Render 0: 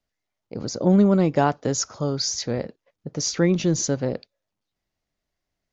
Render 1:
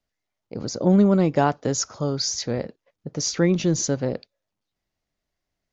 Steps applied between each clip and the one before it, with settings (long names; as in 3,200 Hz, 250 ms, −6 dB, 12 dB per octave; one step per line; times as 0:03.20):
no processing that can be heard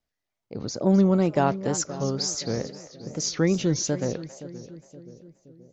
echo with a time of its own for lows and highs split 560 Hz, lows 523 ms, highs 265 ms, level −14 dB
tape wow and flutter 100 cents
level −2.5 dB